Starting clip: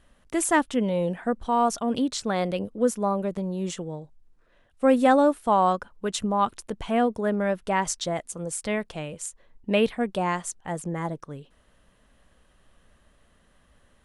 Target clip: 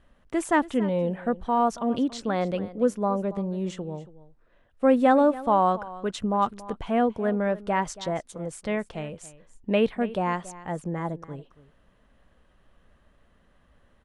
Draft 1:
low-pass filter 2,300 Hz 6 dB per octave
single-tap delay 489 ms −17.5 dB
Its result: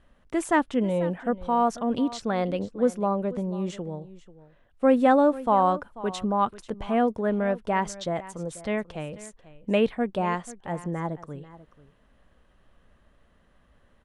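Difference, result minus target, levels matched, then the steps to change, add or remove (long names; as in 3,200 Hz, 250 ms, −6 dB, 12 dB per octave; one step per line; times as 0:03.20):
echo 210 ms late
change: single-tap delay 279 ms −17.5 dB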